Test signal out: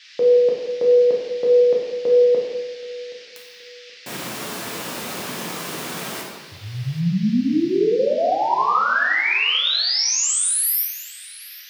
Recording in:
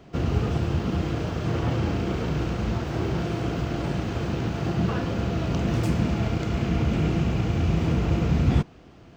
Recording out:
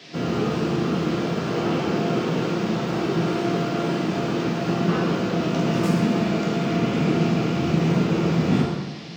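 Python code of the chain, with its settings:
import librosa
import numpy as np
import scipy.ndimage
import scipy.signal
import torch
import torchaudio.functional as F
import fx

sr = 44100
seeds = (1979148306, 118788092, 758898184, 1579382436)

y = scipy.signal.sosfilt(scipy.signal.butter(4, 150.0, 'highpass', fs=sr, output='sos'), x)
y = fx.dmg_noise_band(y, sr, seeds[0], low_hz=1700.0, high_hz=5300.0, level_db=-49.0)
y = fx.echo_feedback(y, sr, ms=775, feedback_pct=29, wet_db=-20.0)
y = fx.rev_plate(y, sr, seeds[1], rt60_s=1.2, hf_ratio=0.65, predelay_ms=0, drr_db=-3.5)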